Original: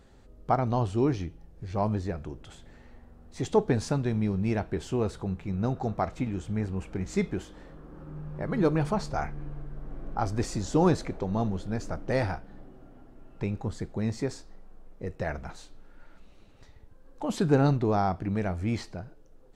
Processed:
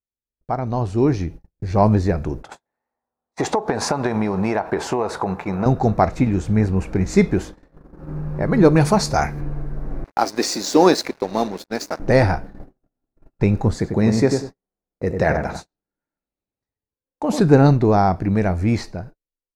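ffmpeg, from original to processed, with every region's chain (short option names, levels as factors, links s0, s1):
-filter_complex "[0:a]asettb=1/sr,asplit=3[s0][s1][s2];[s0]atrim=end=2.434[s3];[s1]atrim=start=2.43:end=5.66,asetpts=PTS-STARTPTS,afade=t=in:d=0.004:c=qsin,afade=t=out:st=3.226:d=0.004:c=qsin,highpass=f=370:p=1,equalizer=f=920:w=0.81:g=14,acompressor=threshold=0.0355:ratio=16:attack=3.2:release=140:knee=1:detection=peak[s4];[s2]atrim=start=5.656[s5];[s3][s4]acrossfade=d=0.004:c1=hsin:c2=qsin[s6];[s6][s5]acrossfade=d=0.004:c1=qsin:c2=hsin,asettb=1/sr,asplit=3[s7][s8][s9];[s7]atrim=end=8.764[s10];[s8]atrim=start=8.76:end=9.41,asetpts=PTS-STARTPTS,afade=t=in:d=0.004:c=qsin,afade=t=out:st=0.646:d=0.004:c=qsin,highpass=43,highshelf=f=3400:g=11.5[s11];[s9]atrim=start=9.406[s12];[s10][s11]acrossfade=d=0.004:c1=hsin:c2=qsin[s13];[s13][s12]acrossfade=d=0.004:c1=qsin:c2=hsin,asettb=1/sr,asplit=3[s14][s15][s16];[s14]atrim=end=10.044[s17];[s15]atrim=start=10.04:end=12,asetpts=PTS-STARTPTS,afade=t=in:d=0.004:c=qsin,afade=t=out:st=1.956:d=0.004:c=qsin,highpass=f=250:w=0.5412,highpass=f=250:w=1.3066,equalizer=f=4200:t=o:w=1.5:g=11,aeval=exprs='sgn(val(0))*max(abs(val(0))-0.00631,0)':c=same[s18];[s16]atrim=start=11.996[s19];[s17][s18]acrossfade=d=0.004:c1=hsin:c2=qsin[s20];[s20][s19]acrossfade=d=0.004:c1=qsin:c2=hsin,asettb=1/sr,asplit=3[s21][s22][s23];[s21]atrim=end=13.744[s24];[s22]atrim=start=13.74:end=17.4,asetpts=PTS-STARTPTS,afade=t=in:d=0.004:c=qsin,afade=t=out:st=3.656:d=0.004:c=qsin,highpass=f=120:p=1,asplit=2[s25][s26];[s26]adelay=96,lowpass=f=1200:p=1,volume=0.631,asplit=2[s27][s28];[s28]adelay=96,lowpass=f=1200:p=1,volume=0.28,asplit=2[s29][s30];[s30]adelay=96,lowpass=f=1200:p=1,volume=0.28,asplit=2[s31][s32];[s32]adelay=96,lowpass=f=1200:p=1,volume=0.28[s33];[s25][s27][s29][s31][s33]amix=inputs=5:normalize=0,atrim=end_sample=161406[s34];[s23]atrim=start=17.396[s35];[s24][s34]acrossfade=d=0.004:c1=hsin:c2=qsin[s36];[s36][s35]acrossfade=d=0.004:c1=qsin:c2=hsin,agate=range=0.00562:threshold=0.00708:ratio=16:detection=peak,equalizer=f=1250:t=o:w=0.33:g=-3,equalizer=f=3150:t=o:w=0.33:g=-10,equalizer=f=8000:t=o:w=0.33:g=-4,dynaudnorm=f=270:g=7:m=5.62"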